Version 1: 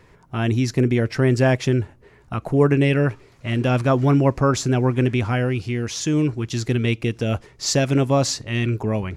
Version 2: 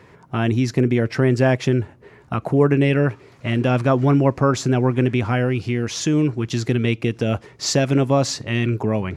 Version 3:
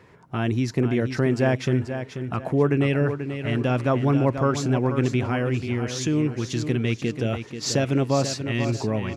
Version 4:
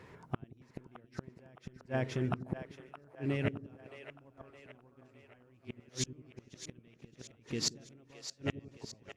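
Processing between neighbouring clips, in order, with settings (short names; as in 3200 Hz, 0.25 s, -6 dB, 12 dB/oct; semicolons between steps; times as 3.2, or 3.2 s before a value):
HPF 100 Hz; high shelf 4300 Hz -6.5 dB; in parallel at +2 dB: compressor, threshold -26 dBFS, peak gain reduction 14 dB; on the sum: gain -1.5 dB
feedback echo 0.486 s, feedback 33%, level -9 dB; gain -4.5 dB
flipped gate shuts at -17 dBFS, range -36 dB; split-band echo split 450 Hz, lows 90 ms, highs 0.617 s, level -11 dB; gain -2.5 dB; Opus 48 kbps 48000 Hz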